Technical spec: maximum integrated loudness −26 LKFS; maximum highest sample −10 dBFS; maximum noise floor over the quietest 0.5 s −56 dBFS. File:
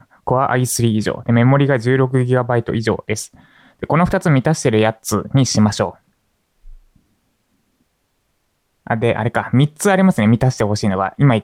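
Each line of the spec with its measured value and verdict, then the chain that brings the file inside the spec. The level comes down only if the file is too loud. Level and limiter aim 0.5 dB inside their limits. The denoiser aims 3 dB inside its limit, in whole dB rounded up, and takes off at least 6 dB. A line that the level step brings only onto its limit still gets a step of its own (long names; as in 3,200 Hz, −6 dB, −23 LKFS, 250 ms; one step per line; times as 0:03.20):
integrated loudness −16.5 LKFS: out of spec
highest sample −3.5 dBFS: out of spec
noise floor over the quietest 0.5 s −66 dBFS: in spec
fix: level −10 dB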